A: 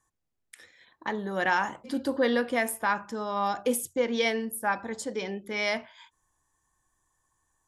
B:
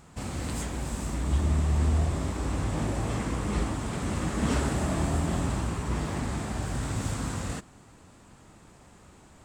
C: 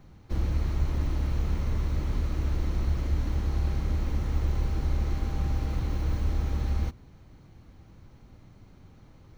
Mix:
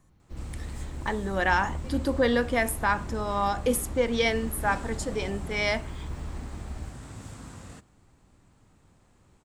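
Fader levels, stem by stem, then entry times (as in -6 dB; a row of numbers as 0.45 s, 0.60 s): +1.5 dB, -11.5 dB, -10.5 dB; 0.00 s, 0.20 s, 0.00 s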